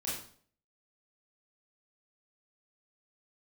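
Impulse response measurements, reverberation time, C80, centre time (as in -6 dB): 0.50 s, 7.0 dB, 50 ms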